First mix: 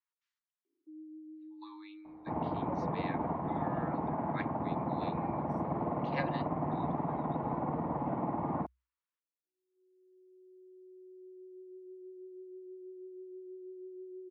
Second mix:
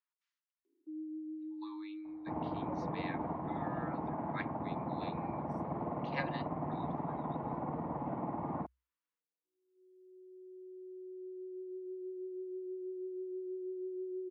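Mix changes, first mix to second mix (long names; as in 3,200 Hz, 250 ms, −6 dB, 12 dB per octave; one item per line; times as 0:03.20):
first sound +6.0 dB
second sound −4.0 dB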